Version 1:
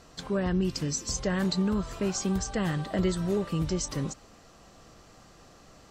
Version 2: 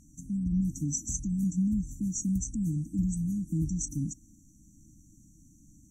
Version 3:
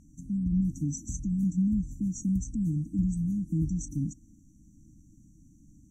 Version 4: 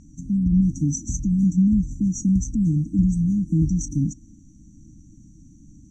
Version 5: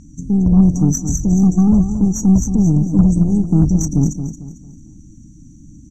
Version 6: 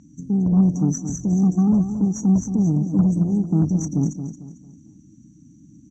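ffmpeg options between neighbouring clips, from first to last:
ffmpeg -i in.wav -af "afftfilt=real='re*(1-between(b*sr/4096,330,5700))':imag='im*(1-between(b*sr/4096,330,5700))':win_size=4096:overlap=0.75" out.wav
ffmpeg -i in.wav -af "highshelf=frequency=2900:gain=-10.5,volume=1.5dB" out.wav
ffmpeg -i in.wav -af "lowpass=frequency=5300:width_type=q:width=1.5,volume=8.5dB" out.wav
ffmpeg -i in.wav -af "aeval=exprs='0.376*(cos(1*acos(clip(val(0)/0.376,-1,1)))-cos(1*PI/2))+0.0133*(cos(4*acos(clip(val(0)/0.376,-1,1)))-cos(4*PI/2))+0.0119*(cos(8*acos(clip(val(0)/0.376,-1,1)))-cos(8*PI/2))':channel_layout=same,aecho=1:1:224|448|672|896:0.335|0.121|0.0434|0.0156,volume=6.5dB" out.wav
ffmpeg -i in.wav -af "highpass=140,lowpass=5400,volume=-4dB" out.wav

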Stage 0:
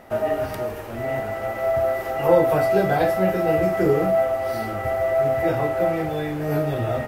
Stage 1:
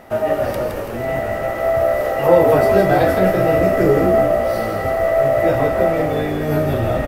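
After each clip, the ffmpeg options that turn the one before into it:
ffmpeg -i in.wav -filter_complex "[0:a]asplit=7[link_01][link_02][link_03][link_04][link_05][link_06][link_07];[link_02]adelay=166,afreqshift=-60,volume=-5.5dB[link_08];[link_03]adelay=332,afreqshift=-120,volume=-11.9dB[link_09];[link_04]adelay=498,afreqshift=-180,volume=-18.3dB[link_10];[link_05]adelay=664,afreqshift=-240,volume=-24.6dB[link_11];[link_06]adelay=830,afreqshift=-300,volume=-31dB[link_12];[link_07]adelay=996,afreqshift=-360,volume=-37.4dB[link_13];[link_01][link_08][link_09][link_10][link_11][link_12][link_13]amix=inputs=7:normalize=0,volume=4dB" out.wav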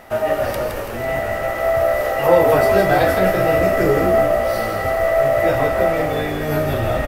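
ffmpeg -i in.wav -af "equalizer=frequency=230:width=0.34:gain=-7,volume=3.5dB" out.wav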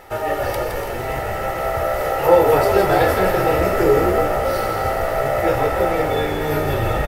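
ffmpeg -i in.wav -filter_complex "[0:a]aecho=1:1:2.3:0.58,asplit=2[link_01][link_02];[link_02]asplit=7[link_03][link_04][link_05][link_06][link_07][link_08][link_09];[link_03]adelay=289,afreqshift=61,volume=-11dB[link_10];[link_04]adelay=578,afreqshift=122,volume=-15.6dB[link_11];[link_05]adelay=867,afreqshift=183,volume=-20.2dB[link_12];[link_06]adelay=1156,afreqshift=244,volume=-24.7dB[link_13];[link_07]adelay=1445,afreqshift=305,volume=-29.3dB[link_14];[link_08]adelay=1734,afreqshift=366,volume=-33.9dB[link_15];[link_09]adelay=2023,afreqshift=427,volume=-38.5dB[link_16];[link_10][link_11][link_12][link_13][link_14][link_15][link_16]amix=inputs=7:normalize=0[link_17];[link_01][link_17]amix=inputs=2:normalize=0,volume=-1dB" out.wav

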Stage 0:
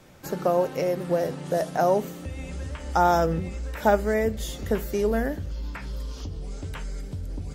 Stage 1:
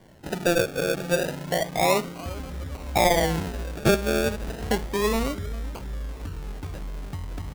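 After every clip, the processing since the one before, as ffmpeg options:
ffmpeg -i in.wav -af "aecho=1:1:401:0.133,acrusher=samples=34:mix=1:aa=0.000001:lfo=1:lforange=20.4:lforate=0.31" out.wav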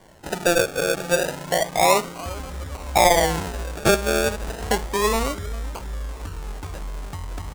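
ffmpeg -i in.wav -af "equalizer=frequency=125:width_type=o:width=1:gain=-5,equalizer=frequency=250:width_type=o:width=1:gain=-4,equalizer=frequency=1000:width_type=o:width=1:gain=4,equalizer=frequency=8000:width_type=o:width=1:gain=5,volume=3dB" out.wav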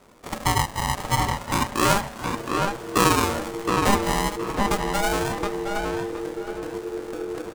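ffmpeg -i in.wav -filter_complex "[0:a]asplit=2[link_01][link_02];[link_02]adelay=719,lowpass=frequency=3200:poles=1,volume=-3.5dB,asplit=2[link_03][link_04];[link_04]adelay=719,lowpass=frequency=3200:poles=1,volume=0.3,asplit=2[link_05][link_06];[link_06]adelay=719,lowpass=frequency=3200:poles=1,volume=0.3,asplit=2[link_07][link_08];[link_08]adelay=719,lowpass=frequency=3200:poles=1,volume=0.3[link_09];[link_01][link_03][link_05][link_07][link_09]amix=inputs=5:normalize=0,aeval=exprs='val(0)*sin(2*PI*400*n/s)':channel_layout=same" out.wav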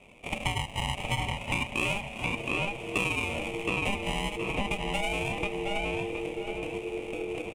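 ffmpeg -i in.wav -af "firequalizer=gain_entry='entry(150,0);entry(330,-5);entry(680,0);entry(1600,-19);entry(2400,14);entry(4300,-13);entry(6400,-8);entry(9500,-3);entry(14000,-18)':delay=0.05:min_phase=1,acompressor=threshold=-26dB:ratio=6" out.wav

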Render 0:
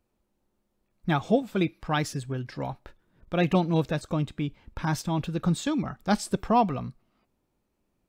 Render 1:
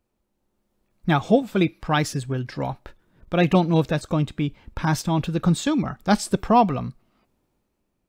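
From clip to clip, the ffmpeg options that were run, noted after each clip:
ffmpeg -i in.wav -af "dynaudnorm=framelen=180:gausssize=7:maxgain=5.5dB" out.wav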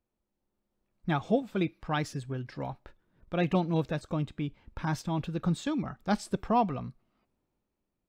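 ffmpeg -i in.wav -af "highshelf=frequency=6300:gain=-7.5,volume=-9dB" out.wav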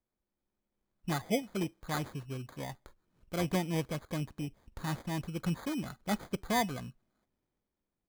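ffmpeg -i in.wav -af "acrusher=samples=16:mix=1:aa=0.000001,volume=-4.5dB" out.wav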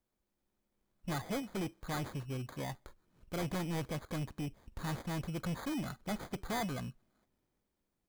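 ffmpeg -i in.wav -af "asoftclip=type=tanh:threshold=-36dB,volume=3dB" out.wav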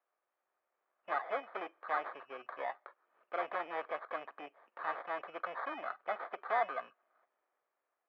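ffmpeg -i in.wav -af "highpass=frequency=480:width=0.5412,highpass=frequency=480:width=1.3066,equalizer=frequency=690:width_type=q:width=4:gain=6,equalizer=frequency=1200:width_type=q:width=4:gain=9,equalizer=frequency=1700:width_type=q:width=4:gain=4,lowpass=frequency=2500:width=0.5412,lowpass=frequency=2500:width=1.3066,volume=1.5dB" out.wav

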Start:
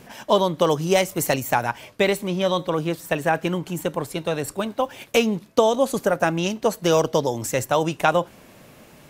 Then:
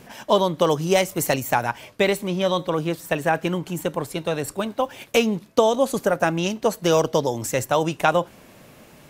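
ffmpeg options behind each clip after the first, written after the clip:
ffmpeg -i in.wav -af anull out.wav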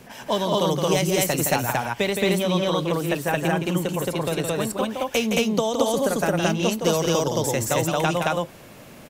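ffmpeg -i in.wav -filter_complex "[0:a]acrossover=split=200|3000[link_01][link_02][link_03];[link_02]acompressor=threshold=-26dB:ratio=2[link_04];[link_01][link_04][link_03]amix=inputs=3:normalize=0,aecho=1:1:166.2|221.6:0.501|1" out.wav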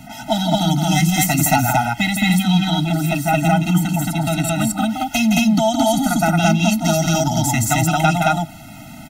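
ffmpeg -i in.wav -filter_complex "[0:a]asplit=2[link_01][link_02];[link_02]volume=19dB,asoftclip=hard,volume=-19dB,volume=-7dB[link_03];[link_01][link_03]amix=inputs=2:normalize=0,afftfilt=real='re*eq(mod(floor(b*sr/1024/310),2),0)':imag='im*eq(mod(floor(b*sr/1024/310),2),0)':win_size=1024:overlap=0.75,volume=6.5dB" out.wav

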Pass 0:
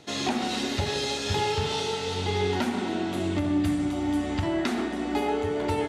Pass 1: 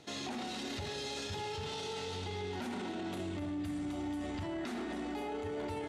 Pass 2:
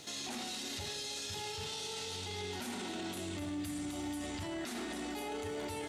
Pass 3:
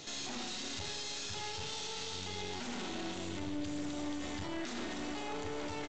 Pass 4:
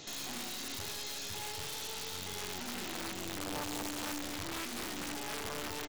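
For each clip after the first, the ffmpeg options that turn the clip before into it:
ffmpeg -i in.wav -af "alimiter=level_in=2.5dB:limit=-24dB:level=0:latency=1:release=12,volume=-2.5dB,volume=-5.5dB" out.wav
ffmpeg -i in.wav -af "crystalizer=i=4:c=0,alimiter=level_in=10dB:limit=-24dB:level=0:latency=1,volume=-10dB,volume=1.5dB" out.wav
ffmpeg -i in.wav -filter_complex "[0:a]aresample=16000,aeval=exprs='clip(val(0),-1,0.00316)':channel_layout=same,aresample=44100,asplit=2[link_01][link_02];[link_02]adelay=37,volume=-12.5dB[link_03];[link_01][link_03]amix=inputs=2:normalize=0,volume=3dB" out.wav
ffmpeg -i in.wav -af "aeval=exprs='(mod(37.6*val(0)+1,2)-1)/37.6':channel_layout=same" out.wav

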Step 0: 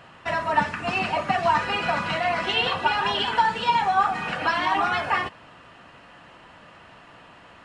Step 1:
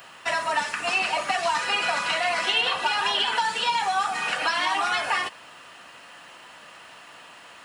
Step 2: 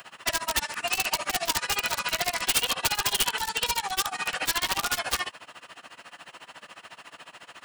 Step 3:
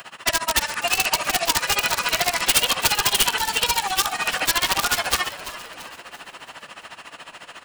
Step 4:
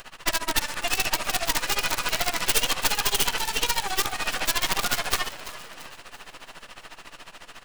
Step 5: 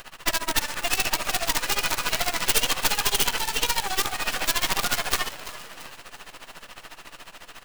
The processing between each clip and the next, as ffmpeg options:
ffmpeg -i in.wav -filter_complex "[0:a]acontrast=85,aemphasis=mode=production:type=riaa,acrossover=split=300|3100[link_01][link_02][link_03];[link_01]acompressor=threshold=-42dB:ratio=4[link_04];[link_02]acompressor=threshold=-16dB:ratio=4[link_05];[link_03]acompressor=threshold=-25dB:ratio=4[link_06];[link_04][link_05][link_06]amix=inputs=3:normalize=0,volume=-6dB" out.wav
ffmpeg -i in.wav -filter_complex "[0:a]aeval=exprs='(mod(7.08*val(0)+1,2)-1)/7.08':channel_layout=same,acrossover=split=120|3000[link_01][link_02][link_03];[link_02]acompressor=threshold=-30dB:ratio=3[link_04];[link_01][link_04][link_03]amix=inputs=3:normalize=0,tremolo=f=14:d=0.93,volume=3.5dB" out.wav
ffmpeg -i in.wav -filter_complex "[0:a]asplit=6[link_01][link_02][link_03][link_04][link_05][link_06];[link_02]adelay=337,afreqshift=-110,volume=-14dB[link_07];[link_03]adelay=674,afreqshift=-220,volume=-20dB[link_08];[link_04]adelay=1011,afreqshift=-330,volume=-26dB[link_09];[link_05]adelay=1348,afreqshift=-440,volume=-32.1dB[link_10];[link_06]adelay=1685,afreqshift=-550,volume=-38.1dB[link_11];[link_01][link_07][link_08][link_09][link_10][link_11]amix=inputs=6:normalize=0,volume=6dB" out.wav
ffmpeg -i in.wav -af "aeval=exprs='max(val(0),0)':channel_layout=same" out.wav
ffmpeg -i in.wav -af "acrusher=bits=2:mode=log:mix=0:aa=0.000001" out.wav

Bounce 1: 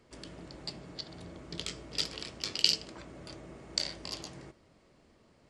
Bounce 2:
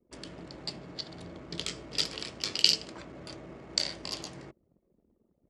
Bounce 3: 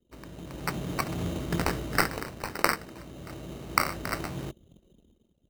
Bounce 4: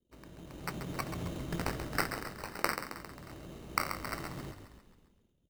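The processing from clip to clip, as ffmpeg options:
ffmpeg -i in.wav -af "anlmdn=0.000251,highpass=frequency=83:poles=1,volume=3dB" out.wav
ffmpeg -i in.wav -af "lowshelf=frequency=180:gain=10,acrusher=samples=13:mix=1:aa=0.000001,dynaudnorm=framelen=120:gausssize=11:maxgain=13.5dB,volume=-4dB" out.wav
ffmpeg -i in.wav -filter_complex "[0:a]asplit=8[link_01][link_02][link_03][link_04][link_05][link_06][link_07][link_08];[link_02]adelay=134,afreqshift=-38,volume=-9dB[link_09];[link_03]adelay=268,afreqshift=-76,volume=-14dB[link_10];[link_04]adelay=402,afreqshift=-114,volume=-19.1dB[link_11];[link_05]adelay=536,afreqshift=-152,volume=-24.1dB[link_12];[link_06]adelay=670,afreqshift=-190,volume=-29.1dB[link_13];[link_07]adelay=804,afreqshift=-228,volume=-34.2dB[link_14];[link_08]adelay=938,afreqshift=-266,volume=-39.2dB[link_15];[link_01][link_09][link_10][link_11][link_12][link_13][link_14][link_15]amix=inputs=8:normalize=0,volume=-7.5dB" out.wav

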